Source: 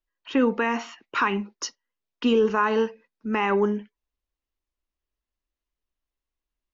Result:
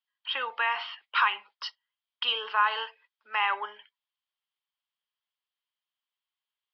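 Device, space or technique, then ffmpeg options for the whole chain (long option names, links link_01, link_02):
musical greeting card: -af "aresample=11025,aresample=44100,highpass=frequency=820:width=0.5412,highpass=frequency=820:width=1.3066,equalizer=frequency=3200:width_type=o:width=0.21:gain=12"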